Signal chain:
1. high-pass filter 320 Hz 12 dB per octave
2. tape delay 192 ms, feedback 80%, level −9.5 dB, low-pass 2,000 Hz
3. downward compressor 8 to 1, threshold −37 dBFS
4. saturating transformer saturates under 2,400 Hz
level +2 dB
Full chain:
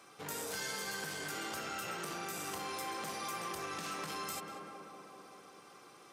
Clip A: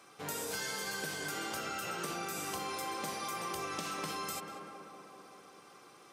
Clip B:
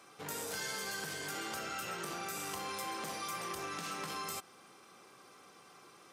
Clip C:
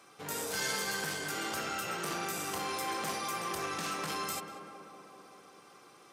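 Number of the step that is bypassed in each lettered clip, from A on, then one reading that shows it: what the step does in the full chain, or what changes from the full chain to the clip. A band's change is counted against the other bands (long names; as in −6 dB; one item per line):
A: 4, change in momentary loudness spread +2 LU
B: 2, change in momentary loudness spread +3 LU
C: 3, average gain reduction 3.0 dB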